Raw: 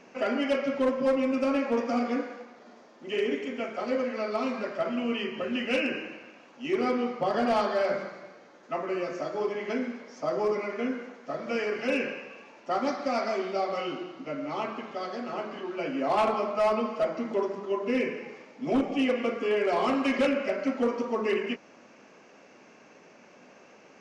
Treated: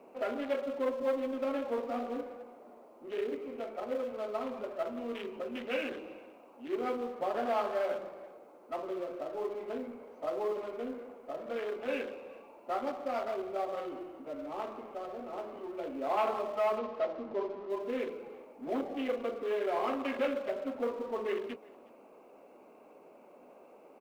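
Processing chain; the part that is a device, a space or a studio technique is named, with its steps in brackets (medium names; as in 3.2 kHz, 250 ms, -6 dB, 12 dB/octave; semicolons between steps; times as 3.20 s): local Wiener filter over 25 samples; phone line with mismatched companding (band-pass 360–3300 Hz; companding laws mixed up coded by mu); 16.78–17.70 s: low-pass 5.5 kHz 24 dB/octave; delay 365 ms -23.5 dB; trim -5 dB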